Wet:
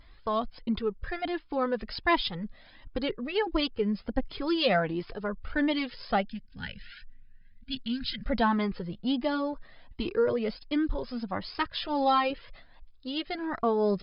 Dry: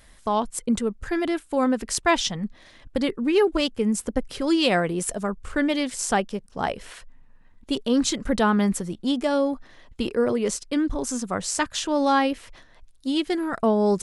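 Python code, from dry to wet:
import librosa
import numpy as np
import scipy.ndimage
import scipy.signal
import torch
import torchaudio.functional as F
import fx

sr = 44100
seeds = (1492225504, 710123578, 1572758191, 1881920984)

y = fx.spec_box(x, sr, start_s=6.25, length_s=1.99, low_hz=260.0, high_hz=1400.0, gain_db=-21)
y = fx.comb(y, sr, ms=5.8, depth=0.63, at=(11.79, 12.3))
y = fx.vibrato(y, sr, rate_hz=0.97, depth_cents=55.0)
y = fx.brickwall_lowpass(y, sr, high_hz=5200.0)
y = fx.comb_cascade(y, sr, direction='rising', hz=1.4)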